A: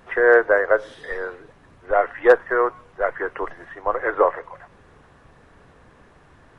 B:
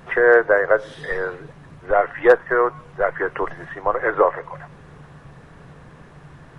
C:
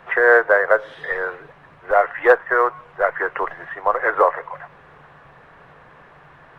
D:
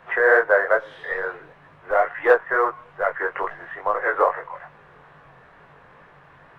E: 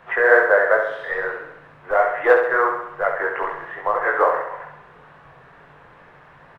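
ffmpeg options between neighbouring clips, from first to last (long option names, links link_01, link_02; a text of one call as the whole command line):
ffmpeg -i in.wav -filter_complex "[0:a]equalizer=frequency=150:width=3.7:gain=13.5,asplit=2[link_01][link_02];[link_02]acompressor=threshold=-25dB:ratio=6,volume=-0.5dB[link_03];[link_01][link_03]amix=inputs=2:normalize=0,volume=-1dB" out.wav
ffmpeg -i in.wav -filter_complex "[0:a]acrusher=bits=8:mode=log:mix=0:aa=0.000001,acrossover=split=500 3300:gain=0.2 1 0.141[link_01][link_02][link_03];[link_01][link_02][link_03]amix=inputs=3:normalize=0,volume=3.5dB" out.wav
ffmpeg -i in.wav -af "flanger=delay=19:depth=4.3:speed=2.3" out.wav
ffmpeg -i in.wav -af "aecho=1:1:67|134|201|268|335|402|469:0.501|0.281|0.157|0.088|0.0493|0.0276|0.0155,volume=1dB" out.wav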